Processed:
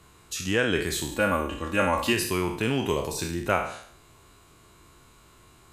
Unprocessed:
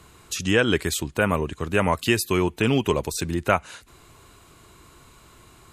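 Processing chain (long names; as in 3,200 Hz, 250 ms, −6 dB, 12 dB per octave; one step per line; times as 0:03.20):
peak hold with a decay on every bin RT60 0.62 s
0:01.11–0:02.13: comb filter 3.6 ms, depth 78%
level −6 dB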